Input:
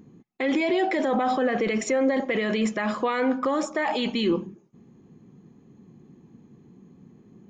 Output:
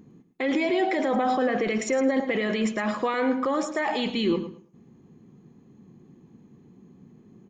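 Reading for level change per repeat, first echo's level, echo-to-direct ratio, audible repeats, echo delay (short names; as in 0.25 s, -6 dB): -14.0 dB, -11.0 dB, -11.0 dB, 2, 0.109 s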